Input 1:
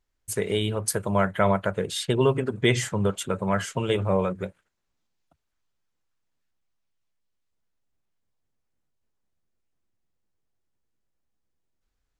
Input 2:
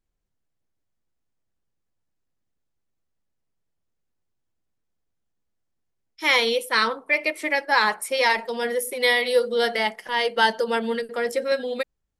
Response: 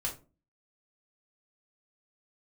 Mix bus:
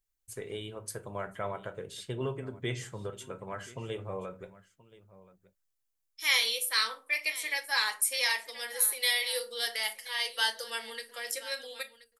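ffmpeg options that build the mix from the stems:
-filter_complex "[0:a]volume=-16dB,asplit=3[a][b][c];[b]volume=-7.5dB[d];[c]volume=-17.5dB[e];[1:a]aderivative,volume=-0.5dB,asplit=3[f][g][h];[g]volume=-5dB[i];[h]volume=-14dB[j];[2:a]atrim=start_sample=2205[k];[d][i]amix=inputs=2:normalize=0[l];[l][k]afir=irnorm=-1:irlink=0[m];[e][j]amix=inputs=2:normalize=0,aecho=0:1:1028:1[n];[a][f][m][n]amix=inputs=4:normalize=0"

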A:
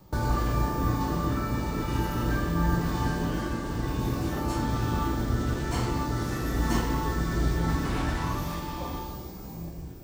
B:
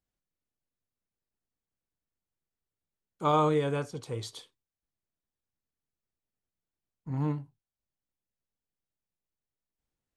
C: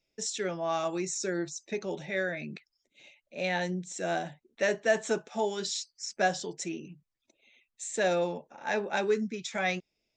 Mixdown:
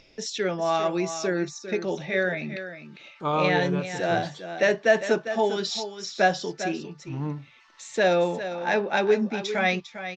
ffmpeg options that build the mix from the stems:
-filter_complex "[0:a]highpass=f=1.1k:w=0.5412,highpass=f=1.1k:w=1.3066,acompressor=threshold=-39dB:ratio=6,adelay=900,volume=-20dB[a];[1:a]volume=-0.5dB[b];[2:a]acontrast=31,volume=1dB,asplit=2[c][d];[d]volume=-11dB,aecho=0:1:401:1[e];[a][b][c][e]amix=inputs=4:normalize=0,lowpass=f=5.4k:w=0.5412,lowpass=f=5.4k:w=1.3066,acompressor=mode=upward:threshold=-42dB:ratio=2.5"

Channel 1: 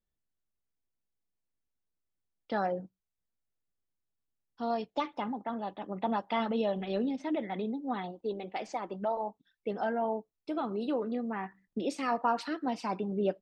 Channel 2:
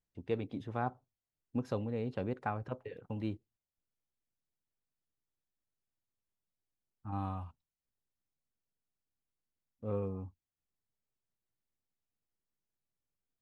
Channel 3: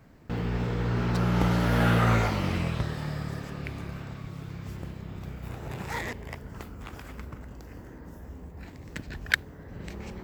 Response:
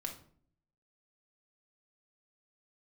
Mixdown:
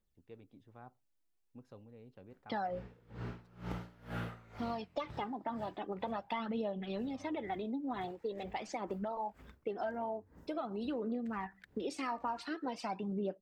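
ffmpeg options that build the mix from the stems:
-filter_complex "[0:a]aphaser=in_gain=1:out_gain=1:delay=3.5:decay=0.49:speed=0.45:type=triangular,volume=0.5dB[a];[1:a]volume=-19dB[b];[2:a]bass=f=250:g=-1,treble=f=4k:g=-3,aeval=exprs='val(0)*pow(10,-26*(0.5-0.5*cos(2*PI*2.1*n/s))/20)':c=same,adelay=2300,volume=-12dB[c];[a][b][c]amix=inputs=3:normalize=0,acompressor=threshold=-36dB:ratio=4"

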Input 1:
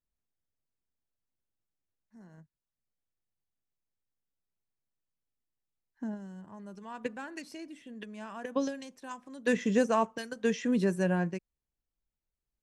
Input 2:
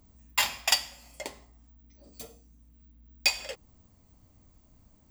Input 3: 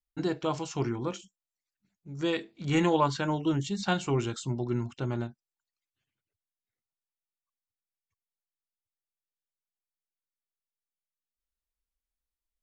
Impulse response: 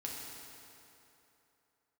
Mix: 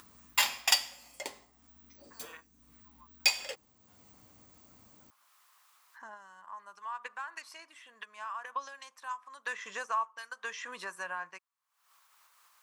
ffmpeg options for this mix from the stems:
-filter_complex "[0:a]asubboost=boost=8.5:cutoff=83,acompressor=mode=upward:threshold=-48dB:ratio=2.5,volume=0.5dB,asplit=2[a][b];[1:a]highpass=f=410:p=1,bandreject=f=640:w=12,acontrast=37,volume=-6dB[c];[2:a]asplit=2[d][e];[e]afreqshift=-0.48[f];[d][f]amix=inputs=2:normalize=1,volume=-16.5dB[g];[b]apad=whole_len=556847[h];[g][h]sidechaingate=range=-33dB:threshold=-54dB:ratio=16:detection=peak[i];[a][i]amix=inputs=2:normalize=0,highpass=f=1.1k:t=q:w=4.9,acompressor=threshold=-39dB:ratio=2,volume=0dB[j];[c][j]amix=inputs=2:normalize=0,acompressor=mode=upward:threshold=-50dB:ratio=2.5"

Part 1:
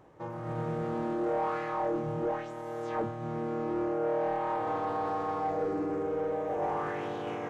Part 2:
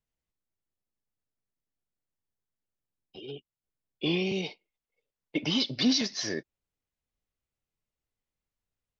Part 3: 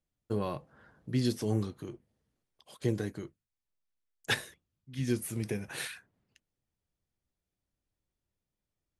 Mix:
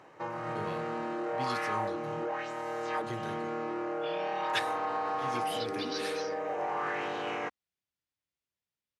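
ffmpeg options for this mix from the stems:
-filter_complex "[0:a]highpass=f=160:p=1,bandreject=f=3.4k:w=11,volume=-1dB[a];[1:a]volume=-17dB[b];[2:a]adelay=250,volume=-12.5dB[c];[a][b]amix=inputs=2:normalize=0,acompressor=threshold=-35dB:ratio=6,volume=0dB[d];[c][d]amix=inputs=2:normalize=0,highpass=76,equalizer=f=2.8k:w=0.33:g=11.5"

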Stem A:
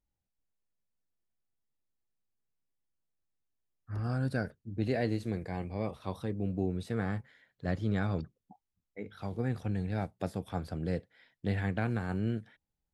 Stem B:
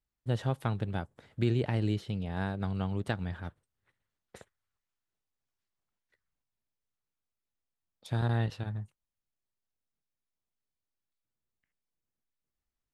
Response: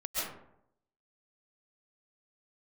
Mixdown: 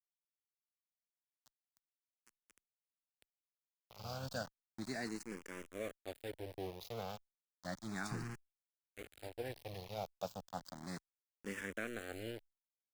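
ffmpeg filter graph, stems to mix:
-filter_complex "[0:a]highpass=f=350:p=1,adynamicequalizer=threshold=0.00251:dfrequency=570:dqfactor=3:tfrequency=570:tqfactor=3:attack=5:release=100:ratio=0.375:range=2.5:mode=boostabove:tftype=bell,volume=-4.5dB,asplit=2[a][b];[1:a]highshelf=f=3.5k:g=-11.5,acompressor=threshold=-41dB:ratio=2,aeval=exprs='clip(val(0),-1,0.0178)':c=same,volume=2dB,asplit=2[c][d];[d]volume=-14dB[e];[b]apad=whole_len=570524[f];[c][f]sidechaingate=range=-31dB:threshold=-58dB:ratio=16:detection=peak[g];[e]aecho=0:1:807|1614|2421|3228|4035|4842|5649:1|0.48|0.23|0.111|0.0531|0.0255|0.0122[h];[a][g][h]amix=inputs=3:normalize=0,equalizer=f=6.8k:t=o:w=1.6:g=14,aeval=exprs='val(0)*gte(abs(val(0)),0.00794)':c=same,asplit=2[i][j];[j]afreqshift=0.33[k];[i][k]amix=inputs=2:normalize=1"

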